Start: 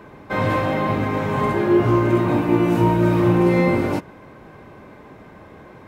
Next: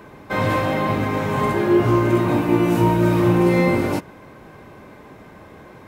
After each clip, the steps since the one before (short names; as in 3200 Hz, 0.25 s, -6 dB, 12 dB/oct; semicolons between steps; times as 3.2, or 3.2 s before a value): high shelf 4700 Hz +7.5 dB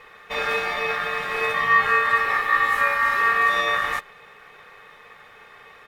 comb 2.9 ms, depth 92%; ring modulator 1500 Hz; gain -4 dB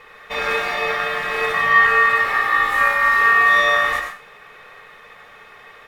reverb RT60 0.40 s, pre-delay 50 ms, DRR 3 dB; gain +2 dB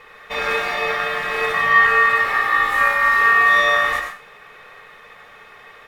nothing audible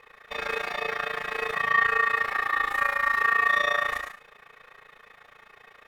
AM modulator 28 Hz, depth 75%; gain -5 dB